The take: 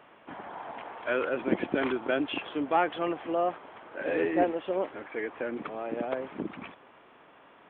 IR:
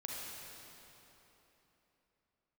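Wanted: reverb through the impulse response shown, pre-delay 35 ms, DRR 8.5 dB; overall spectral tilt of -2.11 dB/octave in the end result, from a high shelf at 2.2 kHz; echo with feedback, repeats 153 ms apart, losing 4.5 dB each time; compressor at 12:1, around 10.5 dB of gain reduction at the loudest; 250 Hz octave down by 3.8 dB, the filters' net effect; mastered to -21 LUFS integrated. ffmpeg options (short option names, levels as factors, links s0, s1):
-filter_complex "[0:a]equalizer=f=250:t=o:g=-5.5,highshelf=f=2200:g=4.5,acompressor=threshold=0.0316:ratio=12,aecho=1:1:153|306|459|612|765|918|1071|1224|1377:0.596|0.357|0.214|0.129|0.0772|0.0463|0.0278|0.0167|0.01,asplit=2[s0][s1];[1:a]atrim=start_sample=2205,adelay=35[s2];[s1][s2]afir=irnorm=-1:irlink=0,volume=0.355[s3];[s0][s3]amix=inputs=2:normalize=0,volume=4.73"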